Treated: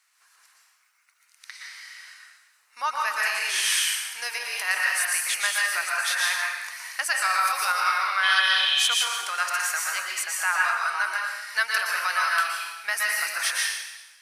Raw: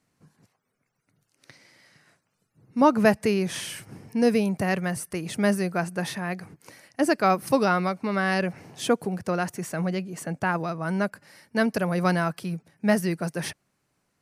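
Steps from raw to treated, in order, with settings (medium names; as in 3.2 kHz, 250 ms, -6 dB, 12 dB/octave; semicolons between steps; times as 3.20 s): in parallel at 0 dB: compression, threshold -32 dBFS, peak gain reduction 17.5 dB; on the sum: spectral replace 8.26–8.82 s, 2.1–4.2 kHz after; plate-style reverb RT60 1.1 s, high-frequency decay 1×, pre-delay 105 ms, DRR -2.5 dB; peak limiter -10.5 dBFS, peak gain reduction 8.5 dB; high-pass 1.2 kHz 24 dB/octave; trim +4 dB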